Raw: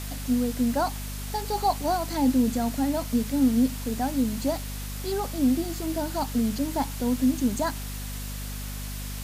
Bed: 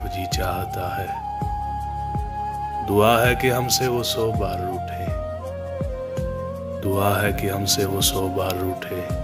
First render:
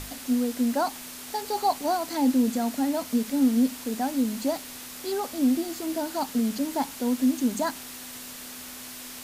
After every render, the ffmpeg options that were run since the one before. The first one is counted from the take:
-af "bandreject=f=50:t=h:w=6,bandreject=f=100:t=h:w=6,bandreject=f=150:t=h:w=6,bandreject=f=200:t=h:w=6"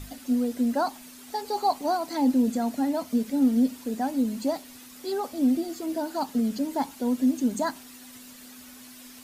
-af "afftdn=nr=10:nf=-41"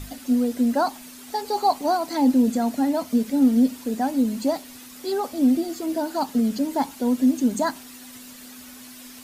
-af "volume=4dB"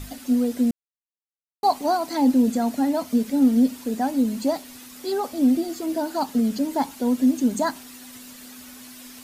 -filter_complex "[0:a]asplit=3[a][b][c];[a]atrim=end=0.71,asetpts=PTS-STARTPTS,afade=t=out:st=0.706:d=0.004:c=hsin[d];[b]atrim=start=0.71:end=1.63,asetpts=PTS-STARTPTS,volume=0[e];[c]atrim=start=1.63,asetpts=PTS-STARTPTS,afade=t=in:d=0.004:c=hsin[f];[d][e][f]concat=n=3:v=0:a=1"

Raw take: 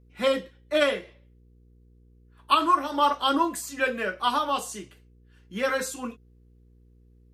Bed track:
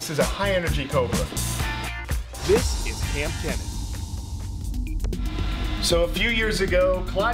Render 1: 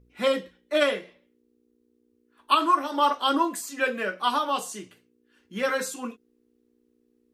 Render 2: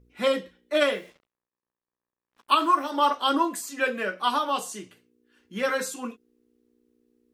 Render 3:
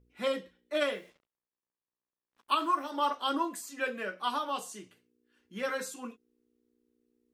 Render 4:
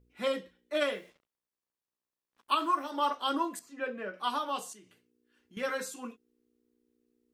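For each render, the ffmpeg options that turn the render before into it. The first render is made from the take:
-af "bandreject=f=60:t=h:w=4,bandreject=f=120:t=h:w=4,bandreject=f=180:t=h:w=4"
-filter_complex "[0:a]asettb=1/sr,asplit=3[a][b][c];[a]atrim=end=0.834[d];[b]atrim=start=0.83:end=2.9,asetpts=PTS-STARTPTS,afade=t=in:d=0.004:c=qsin,afade=t=out:st=2.066:d=0.004:c=qsin,acrusher=bits=8:mix=0:aa=0.5[e];[c]atrim=start=2.896[f];[d][e]acrossfade=d=0.004:c1=hsin:c2=qsin[g];[g][f]acrossfade=d=0.004:c1=qsin:c2=hsin"
-af "volume=-7.5dB"
-filter_complex "[0:a]asettb=1/sr,asplit=3[a][b][c];[a]atrim=end=3.594[d];[b]atrim=start=3.59:end=4.14,asetpts=PTS-STARTPTS,afade=t=in:d=0.004:c=qsin,afade=t=out:st=0.546:d=0.004:c=qsin,lowpass=f=1.2k:p=1[e];[c]atrim=start=4.136[f];[d][e]acrossfade=d=0.004:c1=hsin:c2=qsin[g];[g][f]acrossfade=d=0.004:c1=qsin:c2=hsin,asettb=1/sr,asplit=3[h][i][j];[h]atrim=end=4.734[k];[i]atrim=start=4.73:end=5.57,asetpts=PTS-STARTPTS,afade=t=in:d=0.004:c=qsin,afade=t=out:st=0.836:d=0.004:c=qsin,acompressor=threshold=-56dB:ratio=2.5:attack=3.2:release=140:knee=1:detection=peak[l];[j]atrim=start=5.566[m];[k][l]acrossfade=d=0.004:c1=hsin:c2=qsin[n];[n][m]acrossfade=d=0.004:c1=qsin:c2=hsin"

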